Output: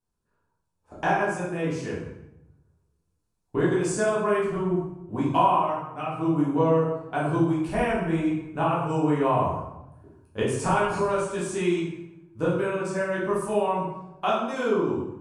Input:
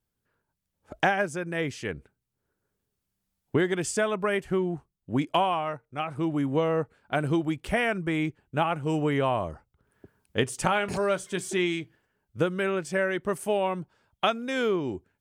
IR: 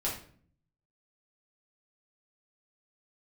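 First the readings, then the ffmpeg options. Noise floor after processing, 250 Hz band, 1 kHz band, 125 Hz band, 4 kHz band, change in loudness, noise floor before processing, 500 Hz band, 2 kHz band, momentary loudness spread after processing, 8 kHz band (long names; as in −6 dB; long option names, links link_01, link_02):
−76 dBFS, +3.0 dB, +4.0 dB, +3.5 dB, −5.5 dB, +2.5 dB, −83 dBFS, +2.5 dB, −2.0 dB, 10 LU, −0.5 dB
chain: -filter_complex "[0:a]equalizer=frequency=1000:width_type=o:width=0.33:gain=8,equalizer=frequency=2000:width_type=o:width=0.33:gain=-8,equalizer=frequency=3150:width_type=o:width=0.33:gain=-6[link_01];[1:a]atrim=start_sample=2205,asetrate=22491,aresample=44100[link_02];[link_01][link_02]afir=irnorm=-1:irlink=0,volume=-9dB"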